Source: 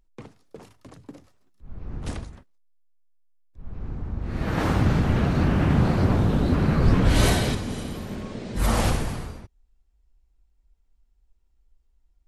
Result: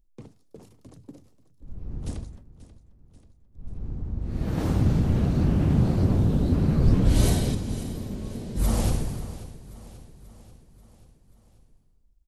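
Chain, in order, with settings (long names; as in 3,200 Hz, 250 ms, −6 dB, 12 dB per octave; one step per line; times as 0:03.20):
parametric band 1,600 Hz −12.5 dB 2.7 octaves
repeating echo 536 ms, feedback 57%, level −16.5 dB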